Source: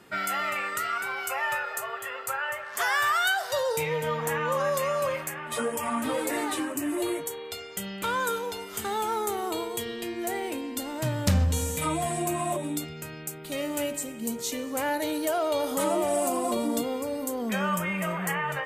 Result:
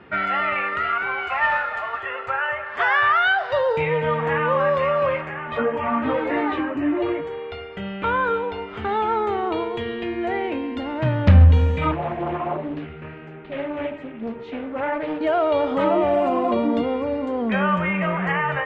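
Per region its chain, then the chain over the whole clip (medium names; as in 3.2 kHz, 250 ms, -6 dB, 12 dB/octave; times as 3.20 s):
1.28–2.03 s: inverse Chebyshev high-pass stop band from 160 Hz, stop band 60 dB + comb 6.6 ms, depth 41% + modulation noise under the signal 12 dB
5.21–8.89 s: treble shelf 4.1 kHz -7.5 dB + doubling 24 ms -13 dB
11.91–15.21 s: tone controls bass -1 dB, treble -13 dB + flange 1.3 Hz, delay 3.2 ms, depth 9.9 ms, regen -29% + loudspeaker Doppler distortion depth 0.41 ms
whole clip: low-pass 2.8 kHz 24 dB/octave; peaking EQ 72 Hz +11 dB 0.43 oct; trim +7 dB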